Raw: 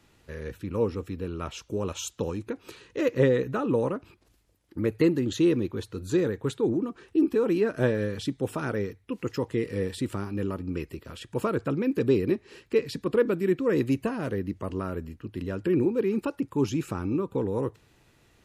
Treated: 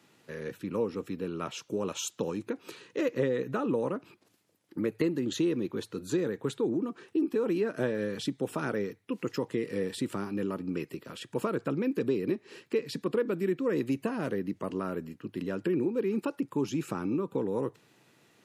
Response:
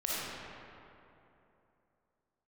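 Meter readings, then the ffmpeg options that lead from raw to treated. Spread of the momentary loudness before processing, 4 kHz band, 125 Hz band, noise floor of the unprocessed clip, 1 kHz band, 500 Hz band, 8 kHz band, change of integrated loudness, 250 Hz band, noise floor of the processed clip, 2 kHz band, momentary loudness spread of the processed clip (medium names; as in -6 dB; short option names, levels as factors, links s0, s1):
11 LU, -1.5 dB, -7.0 dB, -63 dBFS, -2.5 dB, -4.0 dB, -0.5 dB, -4.0 dB, -3.5 dB, -67 dBFS, -3.5 dB, 8 LU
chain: -af "highpass=f=140:w=0.5412,highpass=f=140:w=1.3066,acompressor=threshold=0.0447:ratio=2.5"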